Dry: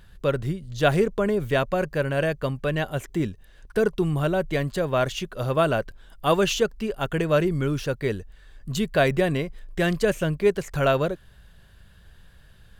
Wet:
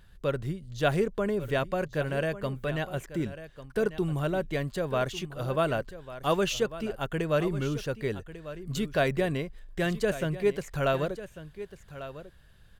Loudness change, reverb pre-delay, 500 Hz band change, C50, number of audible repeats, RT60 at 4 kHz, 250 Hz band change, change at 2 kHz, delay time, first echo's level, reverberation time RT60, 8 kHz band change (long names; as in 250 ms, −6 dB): −5.5 dB, no reverb audible, −5.5 dB, no reverb audible, 1, no reverb audible, −5.5 dB, −5.5 dB, 1,146 ms, −14.0 dB, no reverb audible, −5.5 dB